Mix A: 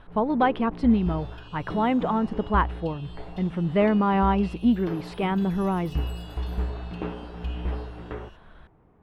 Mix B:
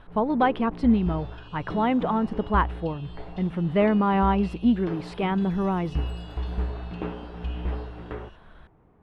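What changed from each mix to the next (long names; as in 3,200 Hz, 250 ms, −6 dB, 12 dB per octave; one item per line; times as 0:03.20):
second sound: add high-frequency loss of the air 68 metres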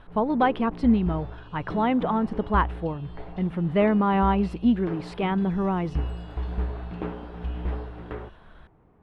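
second sound −6.5 dB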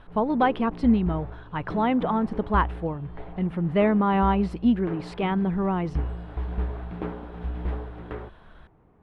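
second sound −11.5 dB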